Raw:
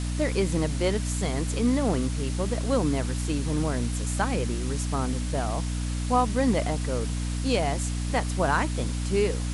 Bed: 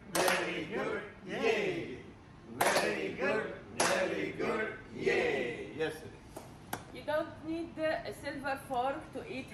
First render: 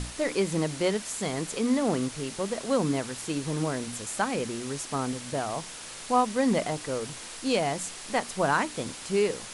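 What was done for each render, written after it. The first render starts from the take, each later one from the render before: notches 60/120/180/240/300 Hz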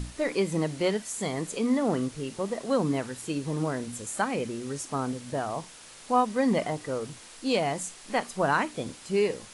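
noise print and reduce 7 dB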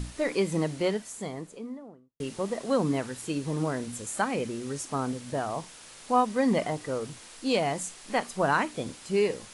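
0.56–2.2 studio fade out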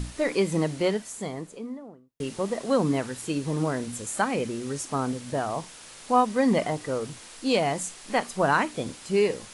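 gain +2.5 dB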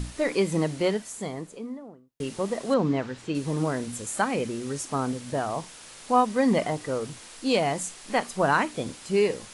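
2.74–3.35 air absorption 130 m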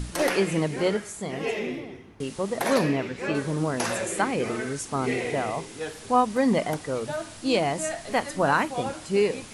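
add bed +1 dB

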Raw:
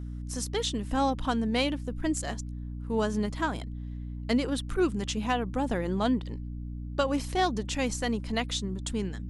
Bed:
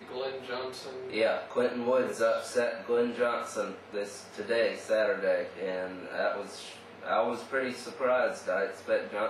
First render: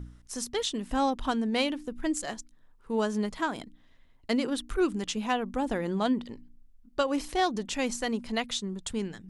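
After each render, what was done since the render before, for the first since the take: de-hum 60 Hz, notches 5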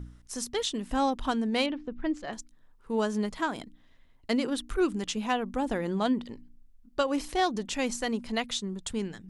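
1.66–2.33 air absorption 240 m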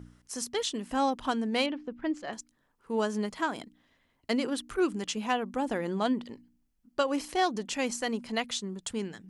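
HPF 180 Hz 6 dB/oct; notch 3700 Hz, Q 16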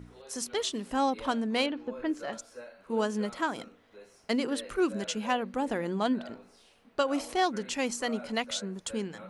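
add bed -17 dB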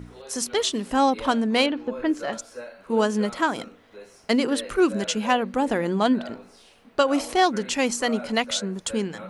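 gain +7.5 dB

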